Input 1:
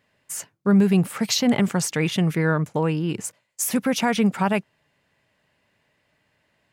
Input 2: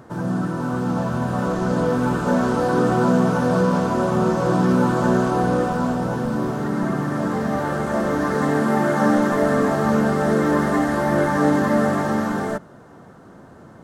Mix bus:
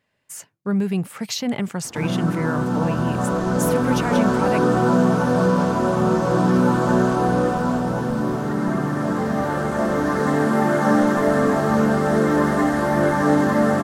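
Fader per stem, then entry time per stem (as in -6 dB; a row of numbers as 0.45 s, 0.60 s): -4.5 dB, +0.5 dB; 0.00 s, 1.85 s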